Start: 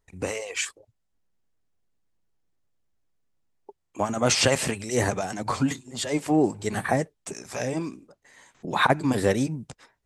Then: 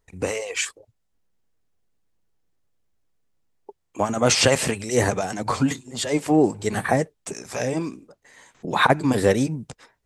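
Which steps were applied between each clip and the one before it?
bell 470 Hz +3 dB 0.24 oct; gain +3 dB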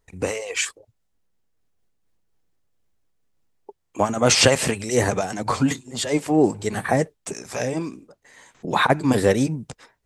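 noise-modulated level, depth 55%; gain +4 dB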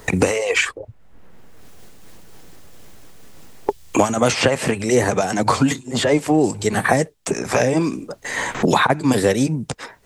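three-band squash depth 100%; gain +3 dB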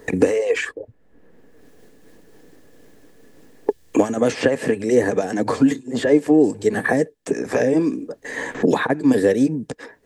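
small resonant body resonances 290/440/1700 Hz, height 13 dB, ringing for 25 ms; gain -10 dB

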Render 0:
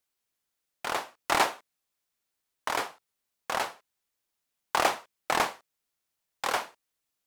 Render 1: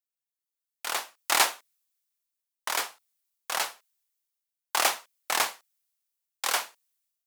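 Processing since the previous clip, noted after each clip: tilt +3.5 dB/oct; AGC gain up to 4.5 dB; three-band expander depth 40%; gain -6.5 dB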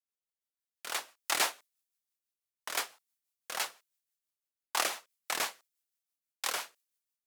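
rotary speaker horn 6 Hz; gain -3 dB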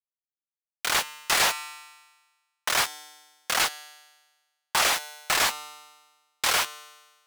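bit-crush 7-bit; resonator 150 Hz, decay 1.3 s, mix 40%; overdrive pedal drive 30 dB, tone 6600 Hz, clips at -15 dBFS; gain +2 dB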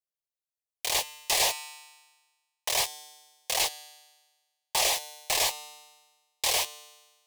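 fixed phaser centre 580 Hz, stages 4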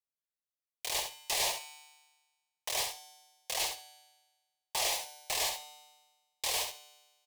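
feedback echo 68 ms, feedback 17%, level -6.5 dB; gain -7 dB

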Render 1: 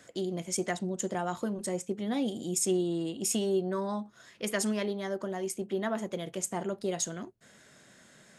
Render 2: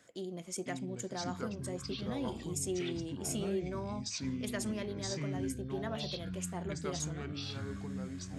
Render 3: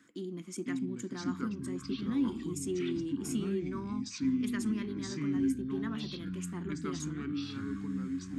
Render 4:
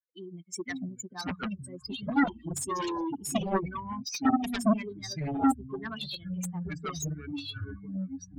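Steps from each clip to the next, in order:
reverse; upward compressor, threshold -44 dBFS; reverse; echoes that change speed 0.436 s, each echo -6 st, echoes 3; gain -8 dB
EQ curve 120 Hz 0 dB, 290 Hz +15 dB, 620 Hz -15 dB, 1100 Hz +7 dB, 2200 Hz +4 dB, 4700 Hz 0 dB; gain -4.5 dB
per-bin expansion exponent 3; added harmonics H 7 -7 dB, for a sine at -25 dBFS; gain +8 dB

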